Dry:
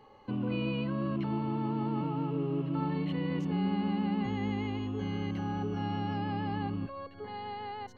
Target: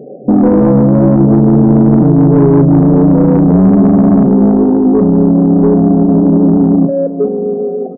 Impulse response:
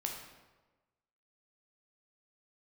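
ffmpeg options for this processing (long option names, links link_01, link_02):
-filter_complex "[0:a]afftfilt=real='re*between(b*sr/4096,130,770)':imag='im*between(b*sr/4096,130,770)':win_size=4096:overlap=0.75,asoftclip=type=tanh:threshold=-31.5dB,asplit=2[link_01][link_02];[link_02]adelay=36,volume=-11.5dB[link_03];[link_01][link_03]amix=inputs=2:normalize=0,asplit=2[link_04][link_05];[link_05]aecho=0:1:708|1416:0.0944|0.0264[link_06];[link_04][link_06]amix=inputs=2:normalize=0,alimiter=level_in=32dB:limit=-1dB:release=50:level=0:latency=1,volume=-1dB"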